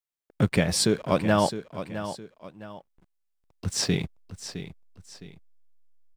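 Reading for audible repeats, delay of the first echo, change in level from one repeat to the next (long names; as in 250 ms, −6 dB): 2, 662 ms, −9.0 dB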